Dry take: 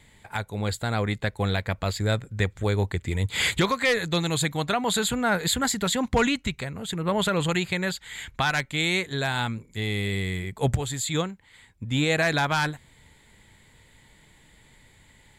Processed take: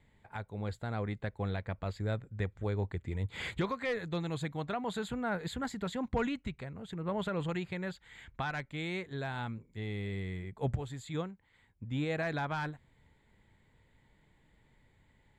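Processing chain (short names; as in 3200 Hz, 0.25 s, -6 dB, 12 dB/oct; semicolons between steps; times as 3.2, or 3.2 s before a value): LPF 1300 Hz 6 dB/oct; gain -9 dB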